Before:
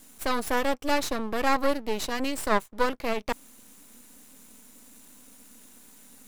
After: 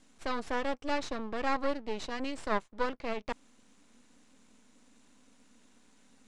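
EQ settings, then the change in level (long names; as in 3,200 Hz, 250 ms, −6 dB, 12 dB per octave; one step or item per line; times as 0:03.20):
Savitzky-Golay smoothing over 9 samples
high-frequency loss of the air 69 metres
−6.5 dB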